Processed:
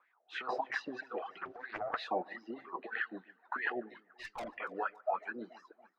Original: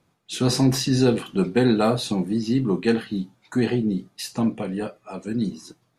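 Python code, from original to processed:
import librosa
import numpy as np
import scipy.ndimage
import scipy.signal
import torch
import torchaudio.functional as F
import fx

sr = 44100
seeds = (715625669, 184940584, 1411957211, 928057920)

y = fx.bandpass_edges(x, sr, low_hz=380.0, high_hz=3000.0)
y = fx.over_compress(y, sr, threshold_db=-28.0, ratio=-0.5)
y = fx.wah_lfo(y, sr, hz=3.1, low_hz=630.0, high_hz=2000.0, q=6.5)
y = fx.tube_stage(y, sr, drive_db=47.0, bias=0.35, at=(4.11, 4.57))
y = fx.echo_alternate(y, sr, ms=142, hz=1500.0, feedback_pct=64, wet_db=-11.5)
y = fx.dereverb_blind(y, sr, rt60_s=1.2)
y = fx.doppler_dist(y, sr, depth_ms=0.58, at=(1.4, 2.03))
y = y * 10.0 ** (8.5 / 20.0)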